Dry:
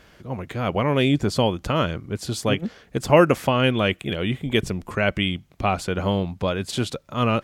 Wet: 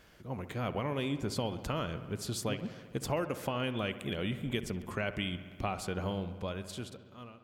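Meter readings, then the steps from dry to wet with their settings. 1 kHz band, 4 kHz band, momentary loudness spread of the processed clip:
-14.0 dB, -13.0 dB, 7 LU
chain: fade out at the end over 1.74 s; treble shelf 9.4 kHz +7.5 dB; compression 5:1, threshold -22 dBFS, peak gain reduction 11.5 dB; feedback echo behind a low-pass 66 ms, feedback 77%, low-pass 2.6 kHz, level -14 dB; trim -8.5 dB

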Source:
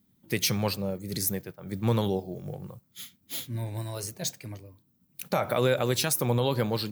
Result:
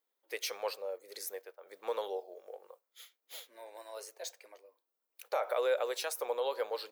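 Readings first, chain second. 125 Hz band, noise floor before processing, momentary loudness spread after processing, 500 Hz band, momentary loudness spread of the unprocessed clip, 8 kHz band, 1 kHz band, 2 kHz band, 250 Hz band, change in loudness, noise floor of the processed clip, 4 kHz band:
under -40 dB, -69 dBFS, 20 LU, -5.0 dB, 18 LU, -12.5 dB, -5.5 dB, -7.5 dB, -26.0 dB, -8.5 dB, under -85 dBFS, -10.5 dB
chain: elliptic high-pass 470 Hz, stop band 70 dB; tilt EQ -2 dB/octave; trim -5.5 dB

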